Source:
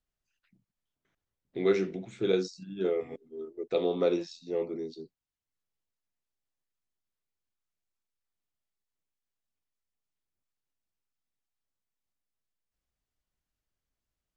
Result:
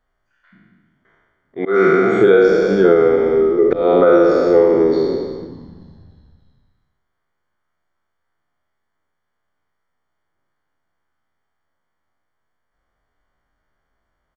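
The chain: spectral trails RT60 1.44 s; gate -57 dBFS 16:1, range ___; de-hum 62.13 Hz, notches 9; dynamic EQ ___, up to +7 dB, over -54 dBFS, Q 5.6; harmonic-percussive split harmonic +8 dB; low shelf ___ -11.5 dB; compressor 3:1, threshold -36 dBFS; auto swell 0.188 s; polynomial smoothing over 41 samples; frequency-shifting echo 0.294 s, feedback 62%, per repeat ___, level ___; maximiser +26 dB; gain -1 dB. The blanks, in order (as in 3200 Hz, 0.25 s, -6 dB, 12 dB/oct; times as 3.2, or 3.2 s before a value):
-8 dB, 1400 Hz, 420 Hz, -81 Hz, -21 dB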